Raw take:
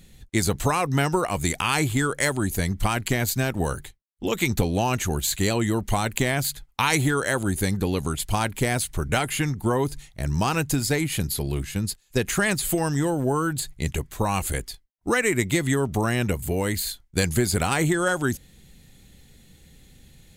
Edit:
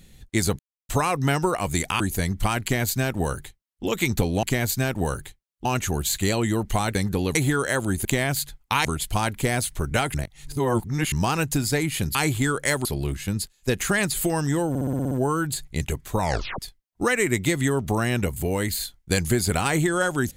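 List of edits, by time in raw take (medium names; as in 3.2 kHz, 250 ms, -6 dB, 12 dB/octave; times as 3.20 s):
0.59 s: insert silence 0.30 s
1.70–2.40 s: move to 11.33 s
3.02–4.24 s: copy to 4.83 s
6.13–6.93 s: swap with 7.63–8.03 s
9.32–10.30 s: reverse
13.17 s: stutter 0.06 s, 8 plays
14.26 s: tape stop 0.39 s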